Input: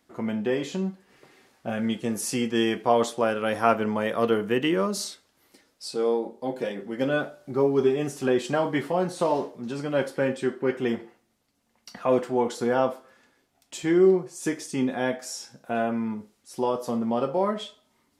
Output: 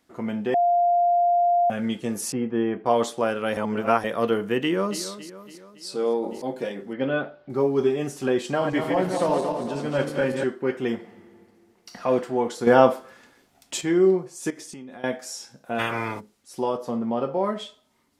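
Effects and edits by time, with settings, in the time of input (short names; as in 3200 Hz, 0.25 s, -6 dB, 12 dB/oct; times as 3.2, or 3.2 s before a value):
0.54–1.7 bleep 699 Hz -16.5 dBFS
2.32–2.86 LPF 1300 Hz
3.57–4.04 reverse
4.61–5.01 echo throw 0.28 s, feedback 55%, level -13 dB
6–6.42 sustainer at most 61 dB/s
6.93–7.5 LPF 3600 Hz 24 dB/oct
8.5–10.44 regenerating reverse delay 0.114 s, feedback 66%, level -4 dB
10.96–12.01 reverb throw, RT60 2.4 s, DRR 1 dB
12.67–13.81 gain +8 dB
14.5–15.04 compressor 16:1, threshold -36 dBFS
15.78–16.19 spectral limiter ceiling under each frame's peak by 29 dB
16.77–17.44 high shelf 4700 Hz -10.5 dB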